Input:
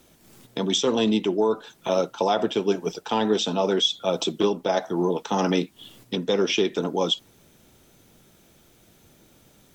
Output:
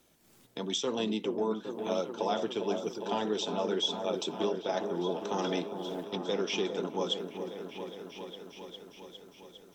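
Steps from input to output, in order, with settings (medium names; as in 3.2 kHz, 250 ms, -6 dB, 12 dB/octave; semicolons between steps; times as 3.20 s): bass shelf 210 Hz -5 dB; delay with an opening low-pass 406 ms, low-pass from 750 Hz, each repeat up 1 oct, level -6 dB; trim -9 dB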